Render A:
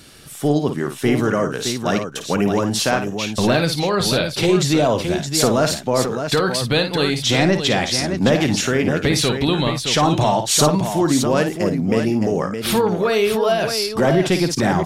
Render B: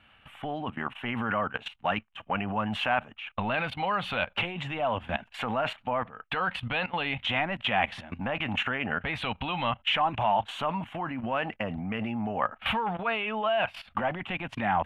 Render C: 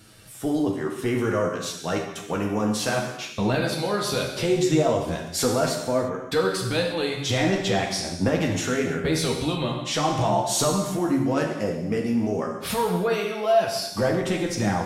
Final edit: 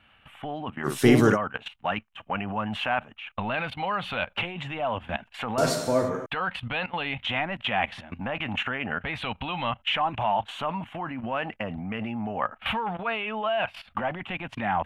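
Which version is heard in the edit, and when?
B
0.86–1.35 s: from A, crossfade 0.06 s
5.58–6.26 s: from C

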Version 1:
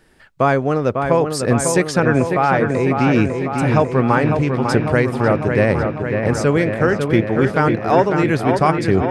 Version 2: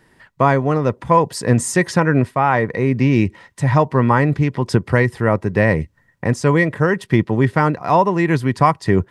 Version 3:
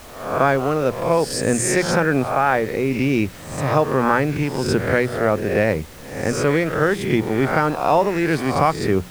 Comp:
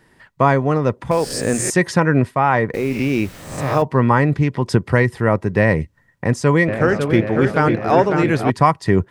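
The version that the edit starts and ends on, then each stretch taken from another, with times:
2
1.11–1.70 s: from 3
2.74–3.82 s: from 3
6.68–8.50 s: from 1

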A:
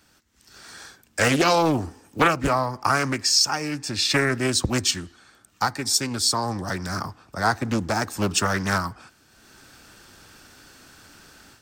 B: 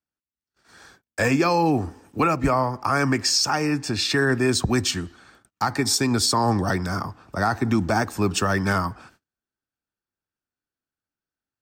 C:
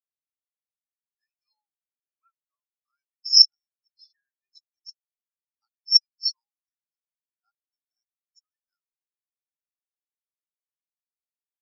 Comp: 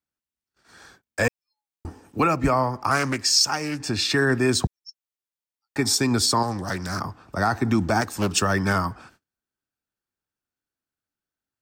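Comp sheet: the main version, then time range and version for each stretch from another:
B
1.28–1.85 s: from C
2.91–3.80 s: from A
4.67–5.76 s: from C
6.43–7.00 s: from A
8.01–8.42 s: from A

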